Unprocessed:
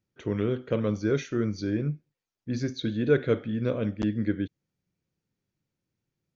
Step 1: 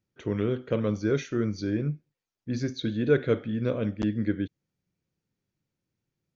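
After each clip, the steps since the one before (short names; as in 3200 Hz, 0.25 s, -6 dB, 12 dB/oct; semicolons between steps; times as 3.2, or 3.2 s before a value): nothing audible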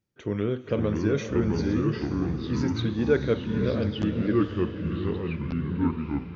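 diffused feedback echo 0.5 s, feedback 48%, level -9.5 dB; echoes that change speed 0.442 s, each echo -4 st, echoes 2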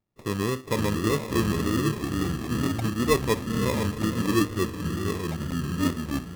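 sample-rate reducer 1500 Hz, jitter 0%; wow and flutter 56 cents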